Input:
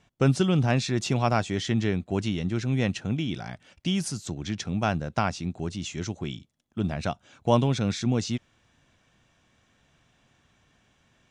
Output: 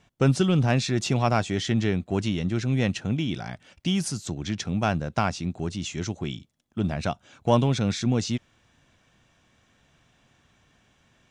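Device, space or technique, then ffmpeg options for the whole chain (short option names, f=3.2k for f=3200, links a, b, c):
parallel distortion: -filter_complex "[0:a]asplit=2[a][b];[b]asoftclip=type=hard:threshold=-23.5dB,volume=-12dB[c];[a][c]amix=inputs=2:normalize=0"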